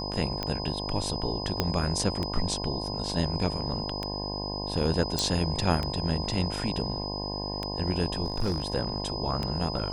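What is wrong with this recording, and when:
buzz 50 Hz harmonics 21 -35 dBFS
tick 33 1/3 rpm -16 dBFS
tone 5000 Hz -35 dBFS
1.6 pop -10 dBFS
5.19 pop
8.24–8.75 clipped -23 dBFS

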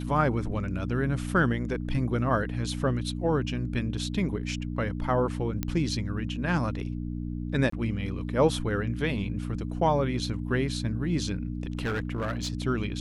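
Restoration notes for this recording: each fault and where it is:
hum 60 Hz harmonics 5 -33 dBFS
5.63 pop -14 dBFS
7.7–7.72 gap 24 ms
11.7–12.52 clipped -25.5 dBFS

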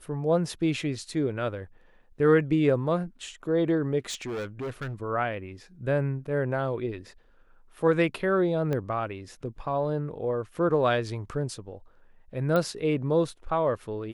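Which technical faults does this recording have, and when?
4.09–4.94 clipped -30 dBFS
8.73 pop -18 dBFS
12.56 pop -15 dBFS

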